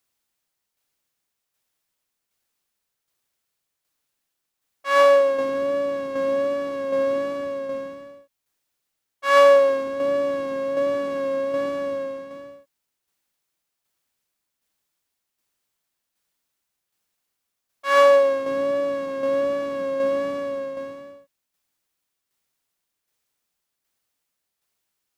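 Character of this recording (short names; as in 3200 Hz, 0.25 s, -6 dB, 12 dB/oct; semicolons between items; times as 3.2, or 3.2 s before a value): tremolo saw down 1.3 Hz, depth 45%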